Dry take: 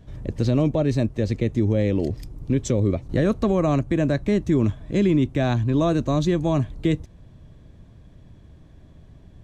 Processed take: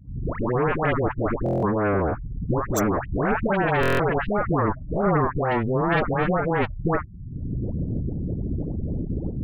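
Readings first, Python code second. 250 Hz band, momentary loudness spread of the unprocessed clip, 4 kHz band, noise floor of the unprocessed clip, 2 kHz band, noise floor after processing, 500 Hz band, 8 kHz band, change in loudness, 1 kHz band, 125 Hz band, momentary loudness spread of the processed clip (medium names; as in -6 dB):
-4.0 dB, 5 LU, -3.5 dB, -49 dBFS, +9.0 dB, -36 dBFS, +0.5 dB, 0.0 dB, -2.0 dB, +8.5 dB, -3.0 dB, 8 LU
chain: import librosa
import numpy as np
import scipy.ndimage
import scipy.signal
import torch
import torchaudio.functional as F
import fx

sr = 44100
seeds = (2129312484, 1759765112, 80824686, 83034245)

y = fx.recorder_agc(x, sr, target_db=-17.0, rise_db_per_s=35.0, max_gain_db=30)
y = fx.spec_gate(y, sr, threshold_db=-15, keep='strong')
y = fx.low_shelf(y, sr, hz=65.0, db=-7.0)
y = fx.cheby_harmonics(y, sr, harmonics=(3, 5, 7, 8), levels_db=(-13, -17, -9, -14), full_scale_db=-9.5)
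y = fx.dispersion(y, sr, late='highs', ms=115.0, hz=930.0)
y = fx.buffer_glitch(y, sr, at_s=(1.44, 3.81), block=1024, repeats=7)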